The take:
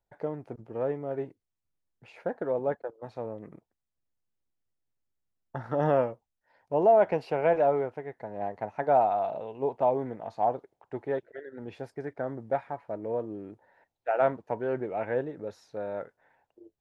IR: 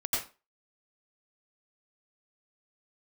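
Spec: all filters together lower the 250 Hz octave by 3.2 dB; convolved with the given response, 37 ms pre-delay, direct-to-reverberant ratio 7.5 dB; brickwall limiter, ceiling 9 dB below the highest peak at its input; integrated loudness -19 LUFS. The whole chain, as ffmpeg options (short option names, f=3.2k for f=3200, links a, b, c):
-filter_complex "[0:a]equalizer=f=250:t=o:g=-4.5,alimiter=limit=-21.5dB:level=0:latency=1,asplit=2[a][b];[1:a]atrim=start_sample=2205,adelay=37[c];[b][c]afir=irnorm=-1:irlink=0,volume=-14dB[d];[a][d]amix=inputs=2:normalize=0,volume=15dB"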